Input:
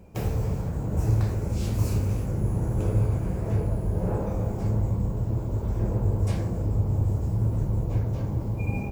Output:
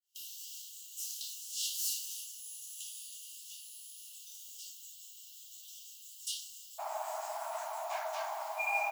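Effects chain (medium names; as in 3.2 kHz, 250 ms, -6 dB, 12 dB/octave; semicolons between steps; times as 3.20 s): fade-in on the opening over 0.58 s; Chebyshev high-pass 2.8 kHz, order 10, from 6.78 s 620 Hz; trim +9.5 dB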